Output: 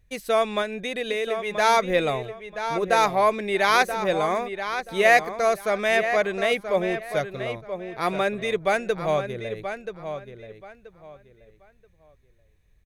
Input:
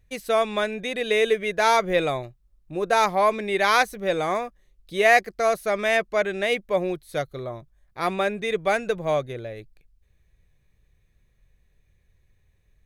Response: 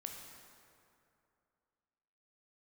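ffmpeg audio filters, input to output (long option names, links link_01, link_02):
-filter_complex "[0:a]asettb=1/sr,asplit=3[link_01][link_02][link_03];[link_01]atrim=end=0.614[link_04];[link_02]atrim=start=0.61:end=1.57,asetpts=PTS-STARTPTS,afade=type=in:duration=0.004:curve=qsin,afade=type=out:start_time=0.956:duration=0.004:curve=qsin,acompressor=threshold=-24dB:ratio=6[link_05];[link_03]atrim=start=1.566[link_06];[link_04][link_05]acrossfade=duration=0.004:curve1=hsin:curve2=qsin[link_07];[link_07][link_06]acrossfade=duration=0.004:curve1=qsin:curve2=hsin,asplit=2[link_08][link_09];[link_09]adelay=980,lowpass=frequency=4600:poles=1,volume=-9dB,asplit=2[link_10][link_11];[link_11]adelay=980,lowpass=frequency=4600:poles=1,volume=0.24,asplit=2[link_12][link_13];[link_13]adelay=980,lowpass=frequency=4600:poles=1,volume=0.24[link_14];[link_10][link_12][link_14]amix=inputs=3:normalize=0[link_15];[link_08][link_15]amix=inputs=2:normalize=0"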